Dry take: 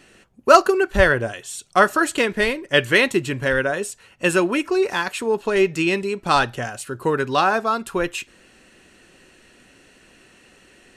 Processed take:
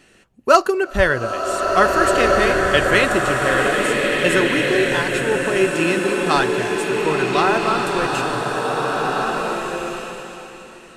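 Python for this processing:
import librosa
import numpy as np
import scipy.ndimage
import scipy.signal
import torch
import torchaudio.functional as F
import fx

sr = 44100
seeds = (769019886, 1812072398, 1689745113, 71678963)

y = fx.rev_bloom(x, sr, seeds[0], attack_ms=1790, drr_db=-1.5)
y = y * librosa.db_to_amplitude(-1.0)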